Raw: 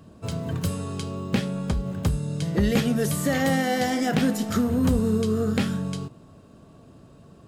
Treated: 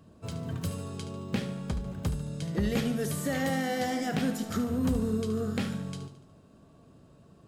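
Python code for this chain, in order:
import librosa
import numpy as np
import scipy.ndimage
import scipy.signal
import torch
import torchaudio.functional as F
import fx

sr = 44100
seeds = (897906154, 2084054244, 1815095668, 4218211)

y = fx.echo_feedback(x, sr, ms=73, feedback_pct=52, wet_db=-11.5)
y = y * 10.0 ** (-7.0 / 20.0)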